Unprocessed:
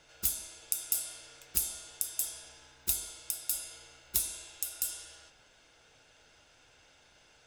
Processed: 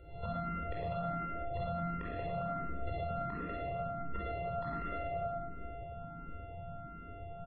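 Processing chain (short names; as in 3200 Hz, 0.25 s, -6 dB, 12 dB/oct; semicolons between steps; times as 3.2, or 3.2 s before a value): sample sorter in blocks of 64 samples; low shelf 380 Hz +9.5 dB; resonator 170 Hz, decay 0.74 s, harmonics odd, mix 70%; feedback echo 0.106 s, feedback 54%, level -10 dB; compressor, threshold -48 dBFS, peak gain reduction 15 dB; tape spacing loss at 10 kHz 39 dB; spectral gate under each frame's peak -30 dB strong; shoebox room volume 2300 m³, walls mixed, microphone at 4.6 m; limiter -44.5 dBFS, peak gain reduction 9.5 dB; endless phaser +1.4 Hz; gain +17.5 dB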